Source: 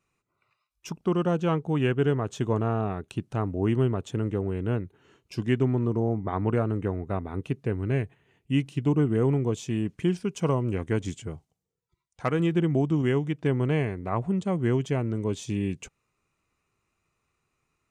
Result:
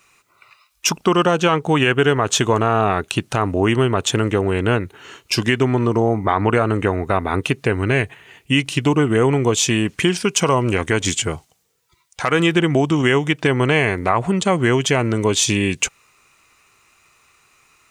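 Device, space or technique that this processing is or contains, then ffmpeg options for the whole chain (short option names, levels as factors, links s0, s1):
mastering chain: -af "equalizer=f=170:t=o:w=0.77:g=-2,acompressor=threshold=0.0398:ratio=2.5,tiltshelf=f=650:g=-7.5,alimiter=level_in=10.6:limit=0.891:release=50:level=0:latency=1,volume=0.708"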